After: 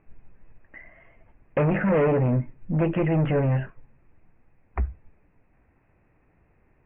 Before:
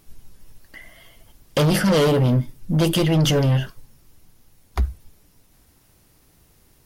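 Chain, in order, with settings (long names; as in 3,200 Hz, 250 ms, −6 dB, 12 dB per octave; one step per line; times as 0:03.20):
Chebyshev low-pass with heavy ripple 2,600 Hz, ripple 3 dB
level −2 dB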